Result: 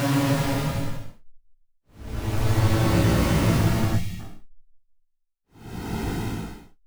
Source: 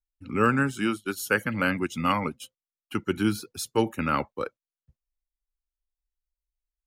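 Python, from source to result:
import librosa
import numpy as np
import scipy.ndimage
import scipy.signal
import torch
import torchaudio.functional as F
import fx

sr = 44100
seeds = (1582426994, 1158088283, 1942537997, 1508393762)

p1 = fx.octave_divider(x, sr, octaves=1, level_db=2.0)
p2 = fx.schmitt(p1, sr, flips_db=-18.0)
p3 = fx.paulstretch(p2, sr, seeds[0], factor=13.0, window_s=0.1, from_s=0.63)
p4 = fx.spec_box(p3, sr, start_s=3.97, length_s=0.23, low_hz=210.0, high_hz=1800.0, gain_db=-15)
p5 = p4 + fx.room_early_taps(p4, sr, ms=(18, 28), db=(-5.0, -9.5), dry=0)
y = p5 * 10.0 ** (6.5 / 20.0)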